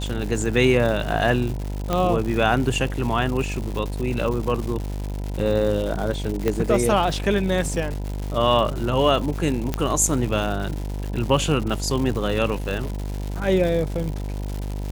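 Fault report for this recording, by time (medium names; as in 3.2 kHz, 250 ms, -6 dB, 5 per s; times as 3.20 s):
buzz 50 Hz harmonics 20 -28 dBFS
crackle 250 per s -28 dBFS
1.93 s: pop -9 dBFS
6.48 s: pop -9 dBFS
9.74 s: pop -9 dBFS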